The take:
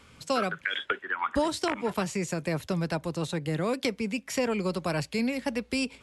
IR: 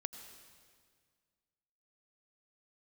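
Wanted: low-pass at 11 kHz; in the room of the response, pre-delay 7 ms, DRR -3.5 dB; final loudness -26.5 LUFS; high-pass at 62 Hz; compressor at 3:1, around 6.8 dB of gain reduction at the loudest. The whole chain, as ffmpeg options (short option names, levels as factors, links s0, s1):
-filter_complex "[0:a]highpass=62,lowpass=11000,acompressor=threshold=0.0251:ratio=3,asplit=2[s0][s1];[1:a]atrim=start_sample=2205,adelay=7[s2];[s1][s2]afir=irnorm=-1:irlink=0,volume=1.88[s3];[s0][s3]amix=inputs=2:normalize=0,volume=1.5"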